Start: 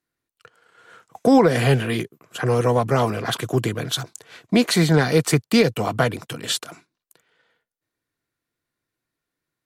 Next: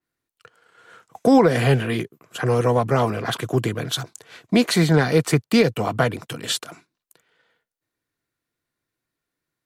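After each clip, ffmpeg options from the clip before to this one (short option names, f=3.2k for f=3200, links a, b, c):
-af "adynamicequalizer=threshold=0.0141:dfrequency=3200:dqfactor=0.7:tfrequency=3200:tqfactor=0.7:attack=5:release=100:ratio=0.375:range=2.5:mode=cutabove:tftype=highshelf"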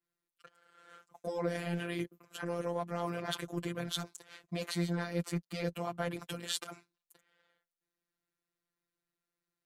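-af "areverse,acompressor=threshold=-24dB:ratio=5,areverse,afftfilt=real='hypot(re,im)*cos(PI*b)':imag='0':win_size=1024:overlap=0.75,volume=-5dB"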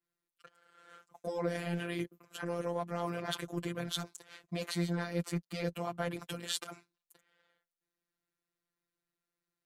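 -af anull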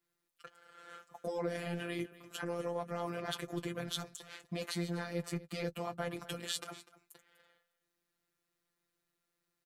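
-filter_complex "[0:a]acompressor=threshold=-51dB:ratio=1.5,asplit=2[a][b];[b]adelay=14,volume=-13dB[c];[a][c]amix=inputs=2:normalize=0,aecho=1:1:248:0.133,volume=5dB"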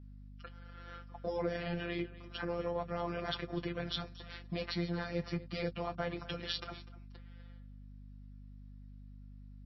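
-af "aeval=exprs='val(0)+0.00282*(sin(2*PI*50*n/s)+sin(2*PI*2*50*n/s)/2+sin(2*PI*3*50*n/s)/3+sin(2*PI*4*50*n/s)/4+sin(2*PI*5*50*n/s)/5)':c=same,volume=1.5dB" -ar 16000 -c:a libmp3lame -b:a 24k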